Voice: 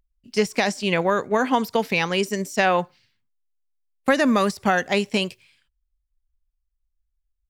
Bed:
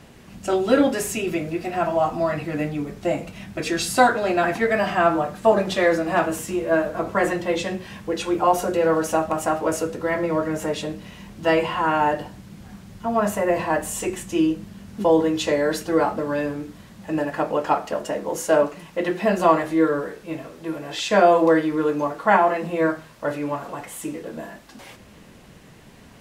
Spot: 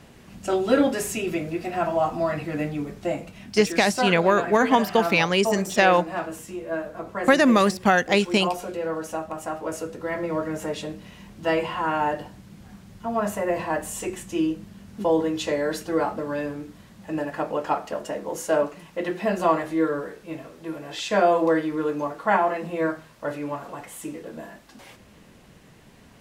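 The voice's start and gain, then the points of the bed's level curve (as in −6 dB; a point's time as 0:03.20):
3.20 s, +1.5 dB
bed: 0:02.87 −2 dB
0:03.84 −9 dB
0:09.40 −9 dB
0:10.36 −4 dB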